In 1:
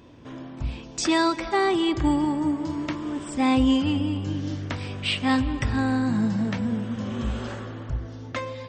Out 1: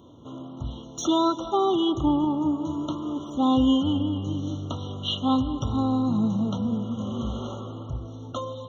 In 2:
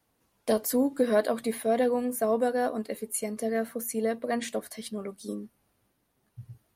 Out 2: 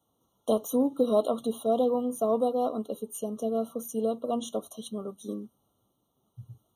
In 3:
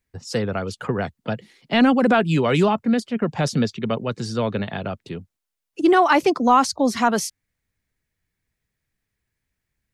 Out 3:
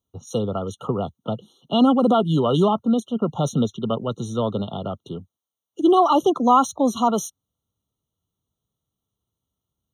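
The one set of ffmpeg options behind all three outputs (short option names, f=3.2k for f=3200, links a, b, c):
-filter_complex "[0:a]acrossover=split=6000[a][b];[b]asoftclip=type=tanh:threshold=-29.5dB[c];[a][c]amix=inputs=2:normalize=0,highpass=72,afftfilt=real='re*eq(mod(floor(b*sr/1024/1400),2),0)':imag='im*eq(mod(floor(b*sr/1024/1400),2),0)':win_size=1024:overlap=0.75"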